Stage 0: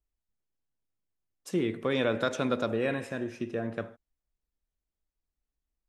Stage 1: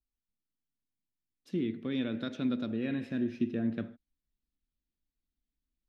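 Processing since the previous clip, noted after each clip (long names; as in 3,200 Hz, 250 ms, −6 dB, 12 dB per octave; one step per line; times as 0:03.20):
high-shelf EQ 3,200 Hz −9.5 dB
speech leveller 0.5 s
graphic EQ with 10 bands 250 Hz +10 dB, 500 Hz −7 dB, 1,000 Hz −10 dB, 4,000 Hz +9 dB, 8,000 Hz −10 dB
level −5 dB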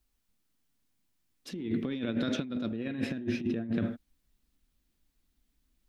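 brickwall limiter −28.5 dBFS, peak gain reduction 8.5 dB
compressor whose output falls as the input rises −40 dBFS, ratio −0.5
level +9 dB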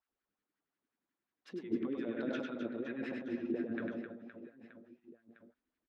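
auto-filter band-pass sine 5.6 Hz 330–1,700 Hz
on a send: reverse bouncing-ball delay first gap 100 ms, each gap 1.6×, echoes 5
on the sum: level +1.5 dB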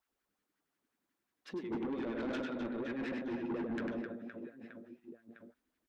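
soft clipping −38.5 dBFS, distortion −8 dB
level +5 dB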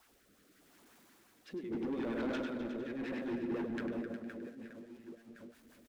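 converter with a step at zero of −57 dBFS
rotating-speaker cabinet horn 0.8 Hz, later 6.3 Hz, at 0:03.02
single-tap delay 360 ms −11.5 dB
level +1 dB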